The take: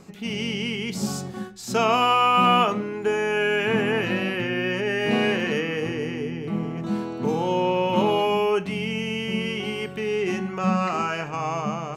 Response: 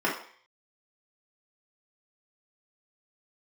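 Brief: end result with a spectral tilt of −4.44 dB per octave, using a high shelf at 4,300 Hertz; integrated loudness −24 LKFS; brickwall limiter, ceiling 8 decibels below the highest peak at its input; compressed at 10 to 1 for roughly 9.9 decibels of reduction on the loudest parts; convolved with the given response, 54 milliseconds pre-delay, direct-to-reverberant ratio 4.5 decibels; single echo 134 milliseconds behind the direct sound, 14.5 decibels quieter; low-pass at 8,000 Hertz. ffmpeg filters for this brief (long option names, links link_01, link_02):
-filter_complex "[0:a]lowpass=8000,highshelf=frequency=4300:gain=-6.5,acompressor=threshold=-25dB:ratio=10,alimiter=limit=-23.5dB:level=0:latency=1,aecho=1:1:134:0.188,asplit=2[link_01][link_02];[1:a]atrim=start_sample=2205,adelay=54[link_03];[link_02][link_03]afir=irnorm=-1:irlink=0,volume=-17.5dB[link_04];[link_01][link_04]amix=inputs=2:normalize=0,volume=6dB"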